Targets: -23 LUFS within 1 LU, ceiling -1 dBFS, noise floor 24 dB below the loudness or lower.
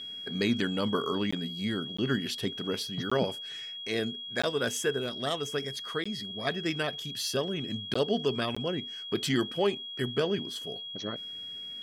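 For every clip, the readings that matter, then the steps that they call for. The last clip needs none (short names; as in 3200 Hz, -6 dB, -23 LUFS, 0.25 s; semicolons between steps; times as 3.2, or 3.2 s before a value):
dropouts 7; longest dropout 15 ms; steady tone 3300 Hz; tone level -38 dBFS; loudness -31.5 LUFS; peak -15.5 dBFS; loudness target -23.0 LUFS
-> interpolate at 1.31/1.97/3.1/4.42/6.04/7.94/8.55, 15 ms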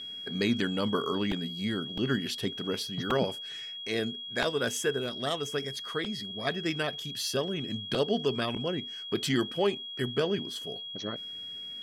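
dropouts 0; steady tone 3300 Hz; tone level -38 dBFS
-> notch 3300 Hz, Q 30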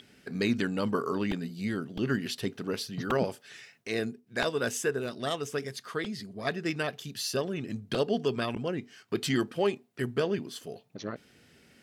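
steady tone none; loudness -32.0 LUFS; peak -16.0 dBFS; loudness target -23.0 LUFS
-> gain +9 dB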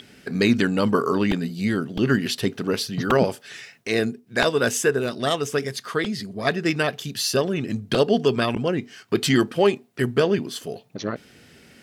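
loudness -23.0 LUFS; peak -7.0 dBFS; noise floor -53 dBFS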